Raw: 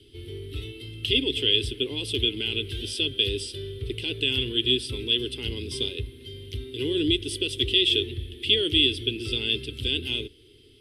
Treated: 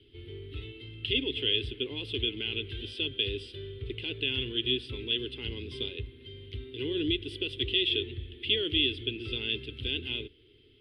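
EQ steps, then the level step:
high-frequency loss of the air 480 metres
tilt shelving filter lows −5.5 dB, about 1,300 Hz
0.0 dB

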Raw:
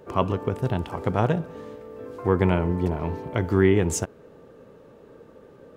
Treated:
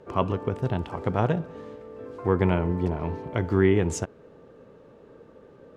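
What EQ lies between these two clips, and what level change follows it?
high-frequency loss of the air 52 metres
−1.5 dB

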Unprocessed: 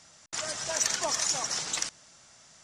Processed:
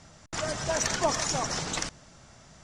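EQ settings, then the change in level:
spectral tilt −3 dB per octave
+5.0 dB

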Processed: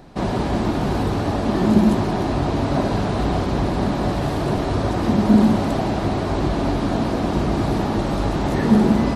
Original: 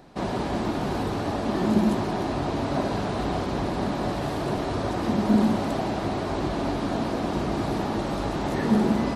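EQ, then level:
low-shelf EQ 150 Hz +7.5 dB
+4.0 dB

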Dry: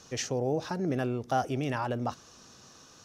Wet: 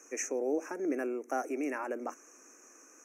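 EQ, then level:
elliptic high-pass filter 290 Hz, stop band 60 dB
elliptic band-stop filter 2,400–6,100 Hz, stop band 40 dB
parametric band 830 Hz −10 dB 1.3 octaves
+3.0 dB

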